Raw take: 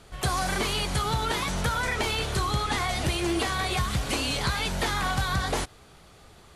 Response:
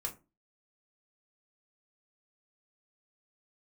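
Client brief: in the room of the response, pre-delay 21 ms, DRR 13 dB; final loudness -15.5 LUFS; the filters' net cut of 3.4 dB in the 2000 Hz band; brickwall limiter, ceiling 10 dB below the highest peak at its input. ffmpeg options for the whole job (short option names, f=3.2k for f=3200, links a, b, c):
-filter_complex "[0:a]equalizer=f=2k:t=o:g=-4.5,alimiter=level_in=1.5dB:limit=-24dB:level=0:latency=1,volume=-1.5dB,asplit=2[a][b];[1:a]atrim=start_sample=2205,adelay=21[c];[b][c]afir=irnorm=-1:irlink=0,volume=-13.5dB[d];[a][d]amix=inputs=2:normalize=0,volume=18dB"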